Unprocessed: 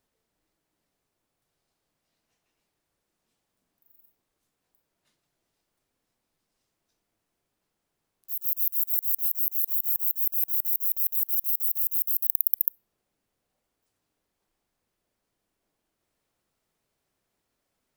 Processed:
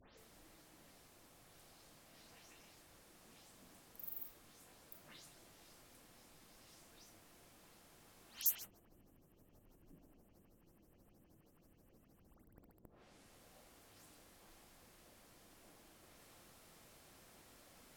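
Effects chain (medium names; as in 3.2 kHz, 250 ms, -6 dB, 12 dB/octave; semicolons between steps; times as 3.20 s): delay that grows with frequency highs late, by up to 174 ms; low-pass that closes with the level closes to 350 Hz, closed at -22 dBFS; trim +17 dB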